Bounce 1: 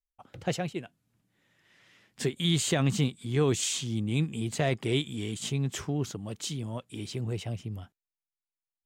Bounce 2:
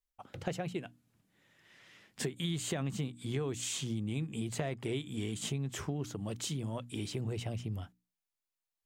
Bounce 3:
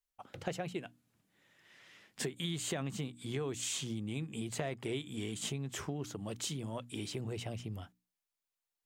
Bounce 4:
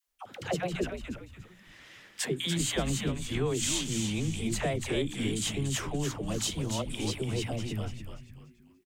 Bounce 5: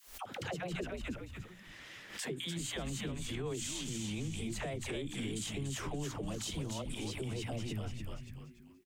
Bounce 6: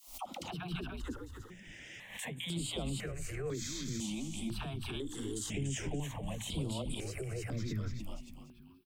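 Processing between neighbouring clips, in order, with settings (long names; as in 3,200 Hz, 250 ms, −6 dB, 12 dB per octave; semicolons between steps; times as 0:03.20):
mains-hum notches 60/120/180/240/300 Hz; dynamic equaliser 4,600 Hz, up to −5 dB, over −45 dBFS, Q 0.71; downward compressor 6 to 1, threshold −34 dBFS, peak gain reduction 12.5 dB; level +1.5 dB
low-shelf EQ 200 Hz −6 dB
all-pass dispersion lows, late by 74 ms, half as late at 590 Hz; echo with shifted repeats 290 ms, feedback 34%, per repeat −120 Hz, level −6 dB; level +7 dB
downward compressor 2.5 to 1, threshold −38 dBFS, peak gain reduction 9.5 dB; brickwall limiter −31 dBFS, peak gain reduction 6.5 dB; background raised ahead of every attack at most 110 dB per second; level +1 dB
step-sequenced phaser 2 Hz 440–6,100 Hz; level +3 dB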